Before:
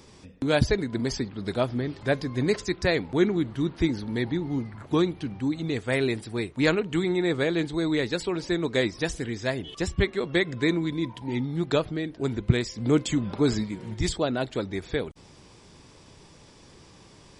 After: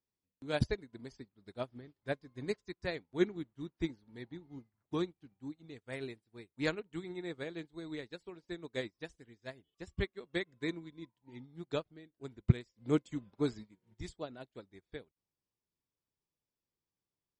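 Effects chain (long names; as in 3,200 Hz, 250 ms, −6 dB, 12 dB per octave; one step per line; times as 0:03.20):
expander for the loud parts 2.5 to 1, over −42 dBFS
level −4.5 dB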